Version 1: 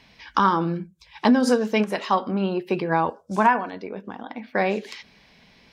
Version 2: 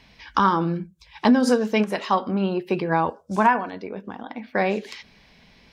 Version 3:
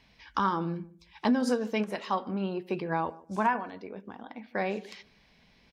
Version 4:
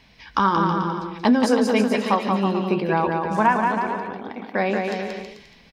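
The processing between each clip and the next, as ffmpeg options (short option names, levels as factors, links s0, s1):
-af "lowshelf=f=74:g=8.5"
-filter_complex "[0:a]asplit=2[s0][s1];[s1]adelay=149,lowpass=f=900:p=1,volume=0.112,asplit=2[s2][s3];[s3]adelay=149,lowpass=f=900:p=1,volume=0.24[s4];[s0][s2][s4]amix=inputs=3:normalize=0,volume=0.376"
-af "aecho=1:1:180|324|439.2|531.4|605.1:0.631|0.398|0.251|0.158|0.1,volume=2.51"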